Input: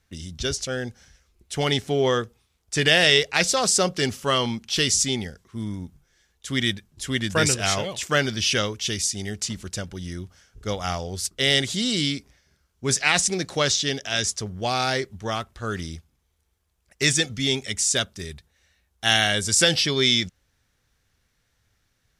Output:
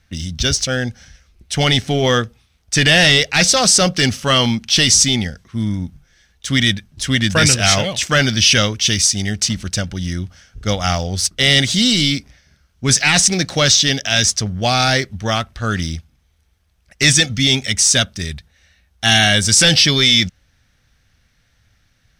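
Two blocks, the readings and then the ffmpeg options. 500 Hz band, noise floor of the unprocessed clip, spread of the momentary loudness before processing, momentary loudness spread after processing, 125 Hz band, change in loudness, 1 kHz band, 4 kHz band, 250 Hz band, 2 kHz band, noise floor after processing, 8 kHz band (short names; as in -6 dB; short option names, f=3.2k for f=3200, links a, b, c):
+4.0 dB, -71 dBFS, 15 LU, 13 LU, +10.5 dB, +8.5 dB, +6.5 dB, +9.0 dB, +9.0 dB, +7.5 dB, -60 dBFS, +9.0 dB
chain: -filter_complex "[0:a]bandreject=f=7.1k:w=8.5,apsyclip=16dB,equalizer=f=400:t=o:w=0.67:g=-9,equalizer=f=1k:t=o:w=0.67:g=-6,equalizer=f=6.3k:t=o:w=0.67:g=3,asplit=2[a][b];[b]adynamicsmooth=sensitivity=2.5:basefreq=5.9k,volume=3dB[c];[a][c]amix=inputs=2:normalize=0,volume=-12dB"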